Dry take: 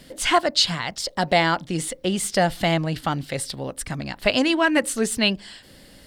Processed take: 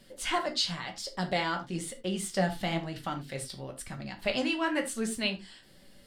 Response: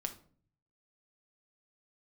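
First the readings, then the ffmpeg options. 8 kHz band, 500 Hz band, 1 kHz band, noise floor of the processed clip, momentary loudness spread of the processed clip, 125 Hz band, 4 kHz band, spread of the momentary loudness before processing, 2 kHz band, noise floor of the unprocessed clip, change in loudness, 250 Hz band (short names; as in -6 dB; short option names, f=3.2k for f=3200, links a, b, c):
-10.5 dB, -10.0 dB, -10.5 dB, -57 dBFS, 11 LU, -9.5 dB, -10.0 dB, 11 LU, -10.0 dB, -49 dBFS, -10.0 dB, -9.0 dB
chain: -filter_complex "[0:a]flanger=delay=8.7:depth=7.7:regen=46:speed=1:shape=sinusoidal[a];[1:a]atrim=start_sample=2205,afade=t=out:st=0.15:d=0.01,atrim=end_sample=7056[b];[a][b]afir=irnorm=-1:irlink=0,volume=-5.5dB"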